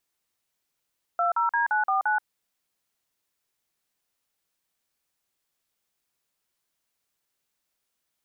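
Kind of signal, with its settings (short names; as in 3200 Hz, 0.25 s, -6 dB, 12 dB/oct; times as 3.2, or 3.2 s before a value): DTMF "20D949", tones 0.129 s, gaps 44 ms, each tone -23.5 dBFS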